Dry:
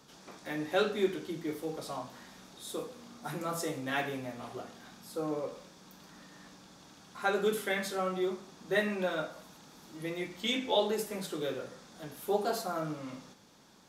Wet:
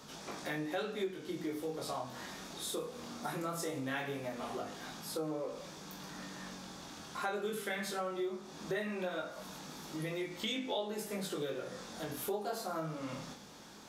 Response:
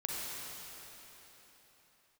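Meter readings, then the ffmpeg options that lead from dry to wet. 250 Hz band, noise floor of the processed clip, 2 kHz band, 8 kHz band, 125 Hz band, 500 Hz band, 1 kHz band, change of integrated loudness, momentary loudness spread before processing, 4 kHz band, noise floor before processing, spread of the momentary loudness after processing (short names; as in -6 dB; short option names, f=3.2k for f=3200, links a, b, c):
-3.0 dB, -51 dBFS, -4.5 dB, 0.0 dB, -1.5 dB, -5.0 dB, -4.0 dB, -5.5 dB, 22 LU, -3.5 dB, -56 dBFS, 9 LU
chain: -af "bandreject=f=60:t=h:w=6,bandreject=f=120:t=h:w=6,bandreject=f=180:t=h:w=6,bandreject=f=240:t=h:w=6,bandreject=f=300:t=h:w=6,flanger=delay=19:depth=5.9:speed=0.19,acompressor=threshold=-47dB:ratio=4,volume=10dB"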